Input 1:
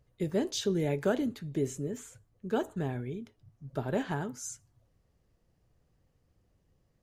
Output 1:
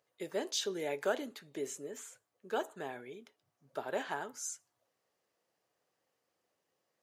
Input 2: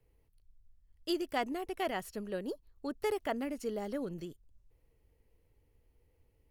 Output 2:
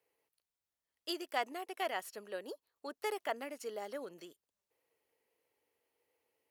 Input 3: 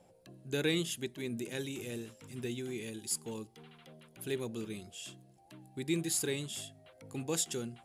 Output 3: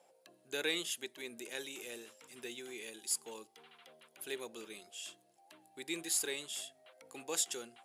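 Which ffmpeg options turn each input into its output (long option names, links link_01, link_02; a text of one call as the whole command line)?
ffmpeg -i in.wav -af "highpass=550" out.wav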